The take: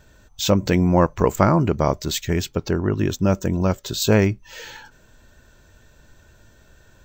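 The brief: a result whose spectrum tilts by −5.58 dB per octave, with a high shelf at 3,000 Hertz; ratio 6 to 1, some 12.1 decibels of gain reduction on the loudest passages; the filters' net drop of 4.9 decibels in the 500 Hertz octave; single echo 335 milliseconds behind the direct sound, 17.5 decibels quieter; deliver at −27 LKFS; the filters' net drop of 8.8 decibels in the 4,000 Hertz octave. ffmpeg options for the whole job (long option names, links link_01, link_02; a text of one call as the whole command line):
ffmpeg -i in.wav -af "equalizer=frequency=500:width_type=o:gain=-6,highshelf=frequency=3000:gain=-6.5,equalizer=frequency=4000:width_type=o:gain=-5.5,acompressor=threshold=-26dB:ratio=6,aecho=1:1:335:0.133,volume=5dB" out.wav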